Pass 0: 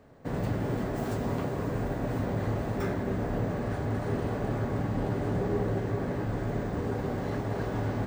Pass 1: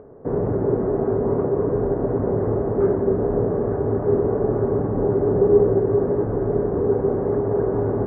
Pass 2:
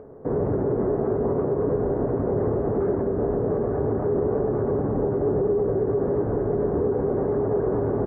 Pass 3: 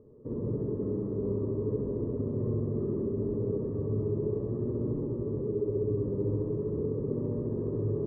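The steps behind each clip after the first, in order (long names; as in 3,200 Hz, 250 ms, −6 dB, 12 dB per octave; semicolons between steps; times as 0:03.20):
low-pass filter 1,300 Hz 24 dB per octave; parametric band 410 Hz +13.5 dB 0.56 octaves; upward compression, threshold −46 dBFS; level +4.5 dB
brickwall limiter −15.5 dBFS, peak gain reduction 10.5 dB; pitch vibrato 8.8 Hz 33 cents; double-tracking delay 14 ms −12.5 dB
flanger 0.41 Hz, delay 8.3 ms, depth 1.6 ms, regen +47%; moving average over 59 samples; flutter between parallel walls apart 11.4 metres, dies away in 1.3 s; level −3 dB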